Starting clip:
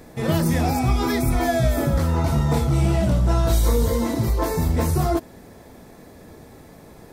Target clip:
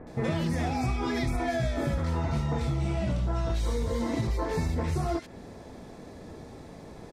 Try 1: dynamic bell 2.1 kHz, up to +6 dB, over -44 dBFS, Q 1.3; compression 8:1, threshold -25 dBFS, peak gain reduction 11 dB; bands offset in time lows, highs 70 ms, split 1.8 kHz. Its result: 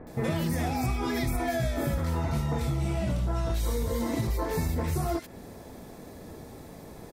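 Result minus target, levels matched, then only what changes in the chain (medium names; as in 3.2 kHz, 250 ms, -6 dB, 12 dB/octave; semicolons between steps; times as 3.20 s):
8 kHz band +4.5 dB
add after dynamic bell: low-pass 6.6 kHz 12 dB/octave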